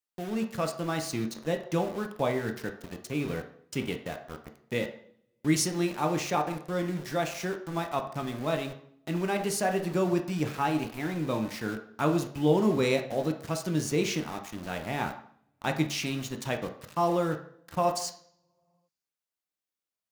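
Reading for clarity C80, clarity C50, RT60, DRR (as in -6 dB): 13.5 dB, 10.0 dB, 0.60 s, 4.5 dB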